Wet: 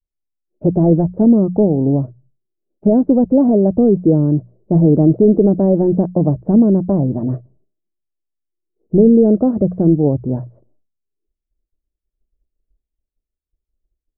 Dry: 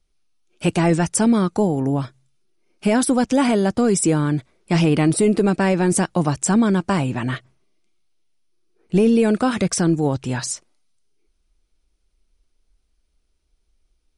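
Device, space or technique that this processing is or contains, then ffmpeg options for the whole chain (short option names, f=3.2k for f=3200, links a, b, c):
under water: -af "agate=range=-33dB:threshold=-52dB:ratio=3:detection=peak,lowpass=f=580:w=0.5412,lowpass=f=580:w=1.3066,equalizer=f=610:t=o:w=0.2:g=5,bandreject=f=60:t=h:w=6,bandreject=f=120:t=h:w=6,bandreject=f=180:t=h:w=6,volume=6dB"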